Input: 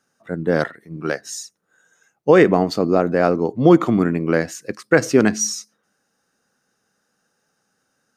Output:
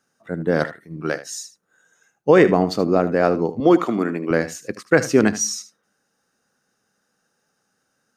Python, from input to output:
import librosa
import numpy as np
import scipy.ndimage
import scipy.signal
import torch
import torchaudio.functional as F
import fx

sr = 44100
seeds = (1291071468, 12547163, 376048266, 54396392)

y = fx.highpass(x, sr, hz=270.0, slope=12, at=(3.6, 4.31))
y = y + 10.0 ** (-14.0 / 20.0) * np.pad(y, (int(77 * sr / 1000.0), 0))[:len(y)]
y = F.gain(torch.from_numpy(y), -1.0).numpy()